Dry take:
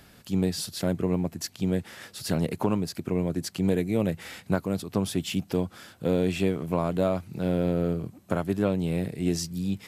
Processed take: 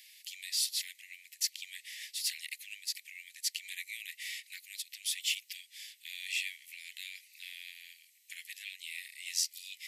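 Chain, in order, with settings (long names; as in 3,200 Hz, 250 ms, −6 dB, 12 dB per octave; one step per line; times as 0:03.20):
Butterworth high-pass 1,900 Hz 96 dB per octave
level +2.5 dB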